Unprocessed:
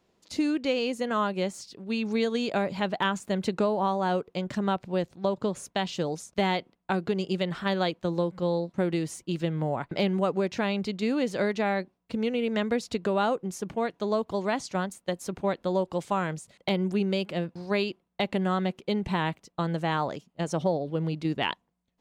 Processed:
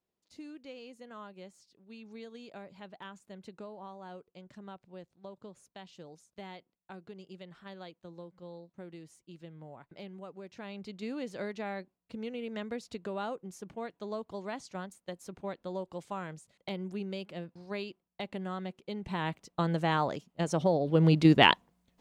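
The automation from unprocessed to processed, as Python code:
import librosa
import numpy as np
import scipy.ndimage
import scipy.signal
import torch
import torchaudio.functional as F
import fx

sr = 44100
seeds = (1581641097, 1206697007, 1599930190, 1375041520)

y = fx.gain(x, sr, db=fx.line((10.39, -20.0), (11.0, -11.0), (18.96, -11.0), (19.46, -1.0), (20.69, -1.0), (21.13, 8.0)))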